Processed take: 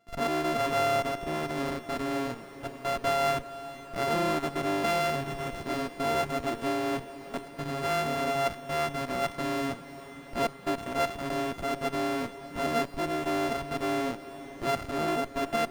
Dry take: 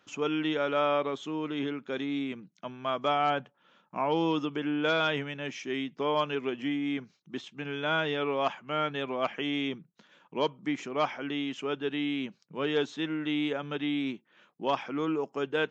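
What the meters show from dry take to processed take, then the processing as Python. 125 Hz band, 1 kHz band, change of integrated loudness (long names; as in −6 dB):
+3.0 dB, +3.0 dB, +0.5 dB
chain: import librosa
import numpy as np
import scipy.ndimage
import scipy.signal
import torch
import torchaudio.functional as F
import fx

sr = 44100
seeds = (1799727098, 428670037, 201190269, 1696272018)

p1 = np.r_[np.sort(x[:len(x) // 64 * 64].reshape(-1, 64), axis=1).ravel(), x[len(x) // 64 * 64:]]
p2 = fx.low_shelf(p1, sr, hz=250.0, db=-3.0)
p3 = fx.schmitt(p2, sr, flips_db=-37.0)
p4 = p2 + F.gain(torch.from_numpy(p3), -7.0).numpy()
p5 = fx.high_shelf(p4, sr, hz=4300.0, db=-11.0)
y = fx.echo_diffused(p5, sr, ms=454, feedback_pct=78, wet_db=-16)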